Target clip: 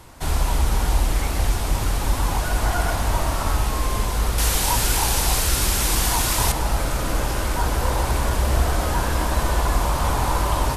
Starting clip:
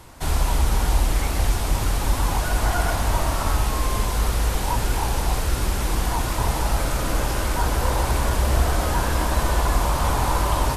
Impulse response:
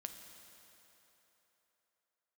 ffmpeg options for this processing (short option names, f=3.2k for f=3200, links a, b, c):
-filter_complex "[0:a]asettb=1/sr,asplit=3[a][b][c];[a]atrim=end=4.384[d];[b]atrim=start=4.38:end=6.52,asetpts=PTS-STARTPTS,afade=t=in:d=0.004:c=qsin,afade=t=out:st=2.136:d=0.004:c=qsin,highshelf=f=2.2k:g=11.5[e];[c]atrim=start=6.516[f];[d][e]acrossfade=d=0.004:c1=hsin:c2=qsin[g];[g][f]acrossfade=d=0.004:c1=qsin:c2=hsin"